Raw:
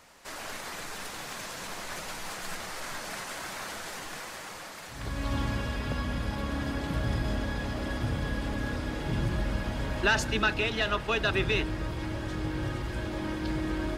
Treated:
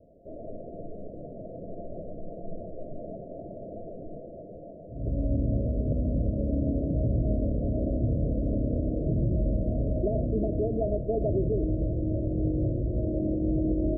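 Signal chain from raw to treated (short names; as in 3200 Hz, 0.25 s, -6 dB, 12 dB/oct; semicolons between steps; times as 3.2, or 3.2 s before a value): Chebyshev low-pass 690 Hz, order 10; limiter -24.5 dBFS, peak gain reduction 5.5 dB; gain +6.5 dB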